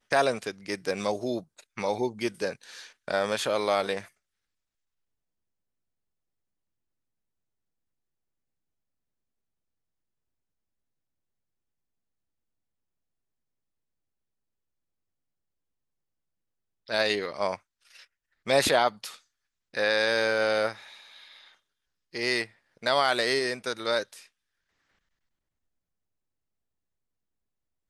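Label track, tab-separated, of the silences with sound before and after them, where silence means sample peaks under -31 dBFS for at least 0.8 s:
4.000000	16.900000	silence
17.550000	18.470000	silence
20.730000	22.150000	silence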